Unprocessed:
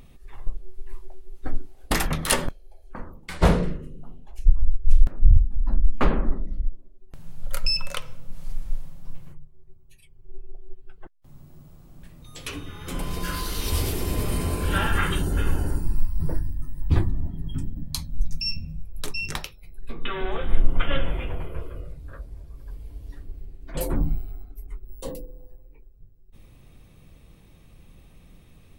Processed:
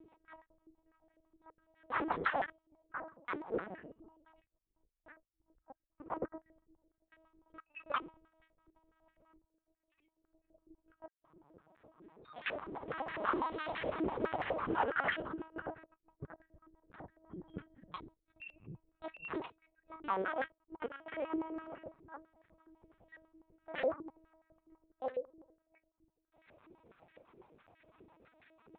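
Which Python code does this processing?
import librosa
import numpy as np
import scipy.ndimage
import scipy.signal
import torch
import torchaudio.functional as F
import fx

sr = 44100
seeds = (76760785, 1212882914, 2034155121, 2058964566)

y = fx.delta_hold(x, sr, step_db=-31.5, at=(12.49, 14.55), fade=0.02)
y = fx.over_compress(y, sr, threshold_db=-24.0, ratio=-0.5)
y = 10.0 ** (-12.0 / 20.0) * np.tanh(y / 10.0 ** (-12.0 / 20.0))
y = fx.lpc_vocoder(y, sr, seeds[0], excitation='pitch_kept', order=8)
y = fx.filter_held_bandpass(y, sr, hz=12.0, low_hz=370.0, high_hz=1800.0)
y = F.gain(torch.from_numpy(y), 2.5).numpy()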